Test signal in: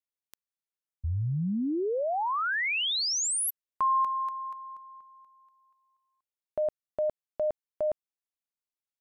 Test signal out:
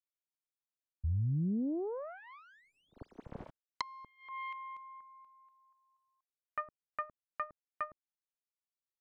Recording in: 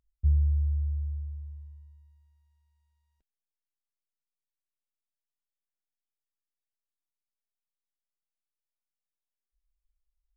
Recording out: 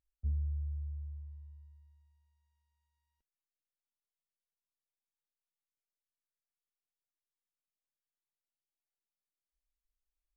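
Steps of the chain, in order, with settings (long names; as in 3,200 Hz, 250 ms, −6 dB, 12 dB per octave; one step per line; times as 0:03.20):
phase distortion by the signal itself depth 0.58 ms
noise reduction from a noise print of the clip's start 8 dB
treble cut that deepens with the level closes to 310 Hz, closed at −26.5 dBFS
level −2.5 dB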